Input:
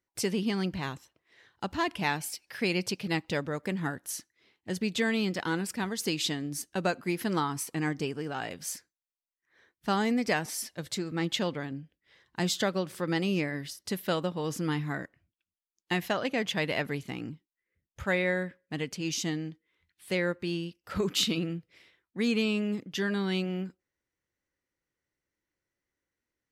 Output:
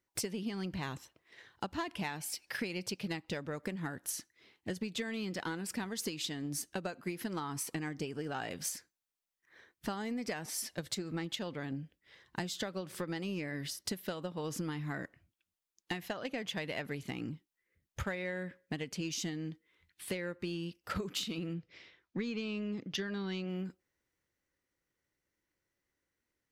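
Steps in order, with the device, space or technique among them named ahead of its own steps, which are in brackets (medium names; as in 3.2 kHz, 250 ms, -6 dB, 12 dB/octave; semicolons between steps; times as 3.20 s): 21.54–23.49 s: steep low-pass 6.5 kHz 36 dB/octave; drum-bus smash (transient shaper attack +7 dB, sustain +2 dB; compression 10:1, threshold -34 dBFS, peak gain reduction 16.5 dB; saturation -26.5 dBFS, distortion -20 dB); trim +1 dB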